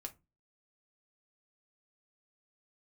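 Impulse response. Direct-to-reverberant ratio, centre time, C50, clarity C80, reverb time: 3.5 dB, 5 ms, 19.0 dB, 28.0 dB, 0.25 s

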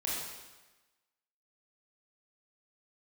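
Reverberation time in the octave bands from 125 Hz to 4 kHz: 1.1, 1.1, 1.1, 1.2, 1.2, 1.1 seconds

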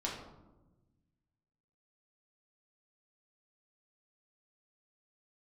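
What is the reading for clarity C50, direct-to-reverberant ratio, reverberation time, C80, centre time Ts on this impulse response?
3.5 dB, −4.0 dB, 1.1 s, 6.5 dB, 45 ms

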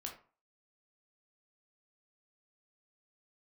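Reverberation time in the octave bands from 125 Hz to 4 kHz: 0.40, 0.40, 0.40, 0.40, 0.30, 0.25 seconds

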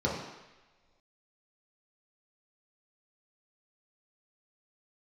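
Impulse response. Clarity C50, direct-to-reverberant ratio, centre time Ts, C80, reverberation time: 2.5 dB, −5.0 dB, 54 ms, 5.5 dB, non-exponential decay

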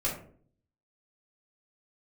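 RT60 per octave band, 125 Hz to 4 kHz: 0.80, 0.70, 0.60, 0.45, 0.35, 0.25 seconds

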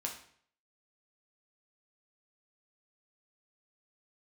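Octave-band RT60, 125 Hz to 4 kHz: 0.65, 0.60, 0.60, 0.55, 0.55, 0.50 seconds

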